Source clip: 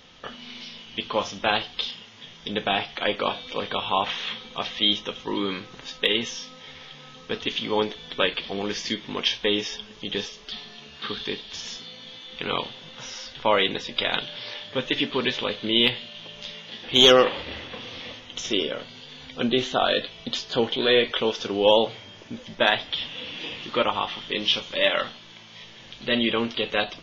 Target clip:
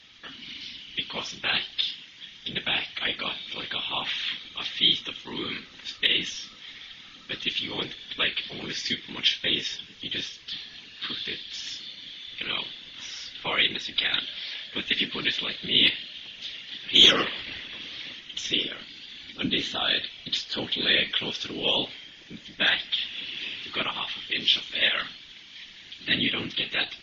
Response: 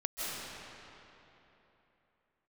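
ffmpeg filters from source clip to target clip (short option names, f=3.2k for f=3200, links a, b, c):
-af "equalizer=f=125:t=o:w=1:g=-11,equalizer=f=250:t=o:w=1:g=5,equalizer=f=500:t=o:w=1:g=-9,equalizer=f=1k:t=o:w=1:g=-5,equalizer=f=2k:t=o:w=1:g=7,equalizer=f=4k:t=o:w=1:g=7,afftfilt=real='hypot(re,im)*cos(2*PI*random(0))':imag='hypot(re,im)*sin(2*PI*random(1))':win_size=512:overlap=0.75"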